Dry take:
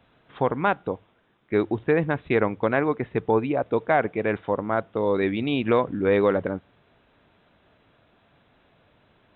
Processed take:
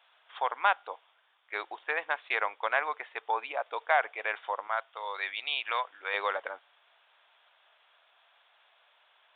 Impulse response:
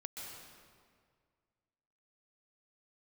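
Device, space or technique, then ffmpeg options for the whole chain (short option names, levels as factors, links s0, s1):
musical greeting card: -filter_complex "[0:a]asettb=1/sr,asplit=3[s0][s1][s2];[s0]atrim=end=4.674[s3];[s1]atrim=start=4.67:end=6.14,asetpts=PTS-STARTPTS,afade=t=in:d=0.004:c=qsin,afade=t=out:st=1.466:d=0.004:c=qsin,highpass=f=900:p=1[s4];[s2]atrim=start=6.136[s5];[s3][s4]acrossfade=d=0.004:c1=hsin:c2=qsin[s6];[s6][s5]acrossfade=d=0.004:c1=qsin:c2=hsin,aresample=8000,aresample=44100,highpass=f=750:w=0.5412,highpass=f=750:w=1.3066,equalizer=f=3400:t=o:w=0.57:g=6,volume=0.891"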